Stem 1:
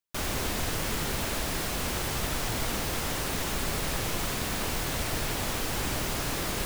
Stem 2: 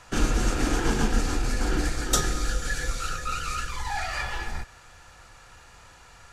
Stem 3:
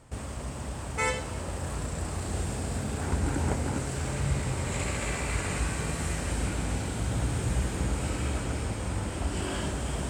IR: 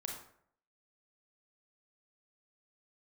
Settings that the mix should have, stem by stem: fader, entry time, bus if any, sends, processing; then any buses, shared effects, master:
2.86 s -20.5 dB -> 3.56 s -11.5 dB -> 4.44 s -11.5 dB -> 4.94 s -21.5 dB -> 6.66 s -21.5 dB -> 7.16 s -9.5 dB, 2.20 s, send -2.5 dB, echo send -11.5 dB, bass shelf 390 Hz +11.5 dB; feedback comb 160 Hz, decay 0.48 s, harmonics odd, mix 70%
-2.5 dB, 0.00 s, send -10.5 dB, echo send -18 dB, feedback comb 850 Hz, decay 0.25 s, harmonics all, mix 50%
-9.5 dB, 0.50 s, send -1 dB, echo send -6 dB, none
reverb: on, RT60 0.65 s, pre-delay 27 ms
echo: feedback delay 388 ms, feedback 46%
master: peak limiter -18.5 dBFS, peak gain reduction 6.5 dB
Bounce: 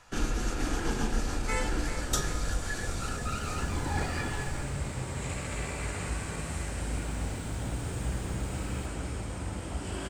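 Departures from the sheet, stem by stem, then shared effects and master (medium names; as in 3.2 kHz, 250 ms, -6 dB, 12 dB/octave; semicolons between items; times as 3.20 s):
stem 1 -20.5 dB -> -30.0 dB; master: missing peak limiter -18.5 dBFS, peak gain reduction 6.5 dB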